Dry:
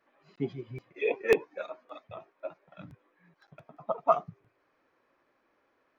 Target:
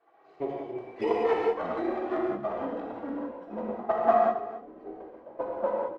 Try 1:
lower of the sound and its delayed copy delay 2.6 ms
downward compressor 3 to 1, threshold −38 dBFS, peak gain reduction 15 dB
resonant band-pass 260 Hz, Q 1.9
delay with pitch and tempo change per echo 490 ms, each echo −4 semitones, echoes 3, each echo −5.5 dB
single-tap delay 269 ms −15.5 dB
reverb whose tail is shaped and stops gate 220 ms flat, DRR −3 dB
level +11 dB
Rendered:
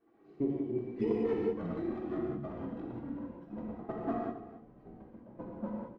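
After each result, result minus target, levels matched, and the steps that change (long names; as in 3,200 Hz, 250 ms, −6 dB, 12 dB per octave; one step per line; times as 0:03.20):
250 Hz band +7.0 dB; downward compressor: peak gain reduction +4.5 dB
change: resonant band-pass 680 Hz, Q 1.9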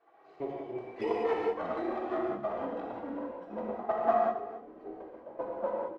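downward compressor: peak gain reduction +4.5 dB
change: downward compressor 3 to 1, threshold −31 dBFS, peak gain reduction 10 dB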